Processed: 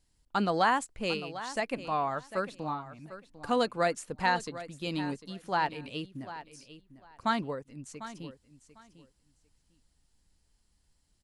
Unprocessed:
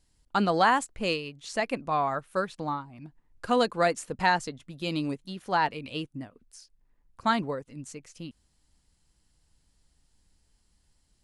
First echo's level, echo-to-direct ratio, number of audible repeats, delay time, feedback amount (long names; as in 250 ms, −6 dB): −14.0 dB, −14.0 dB, 2, 749 ms, 19%